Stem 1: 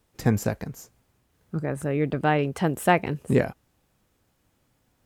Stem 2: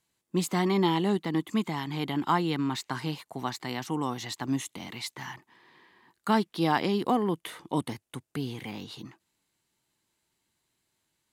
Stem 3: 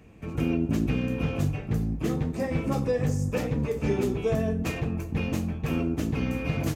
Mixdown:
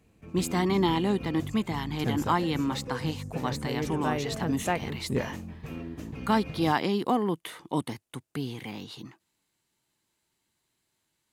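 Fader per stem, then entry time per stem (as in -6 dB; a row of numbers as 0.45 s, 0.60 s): -8.5 dB, 0.0 dB, -11.0 dB; 1.80 s, 0.00 s, 0.00 s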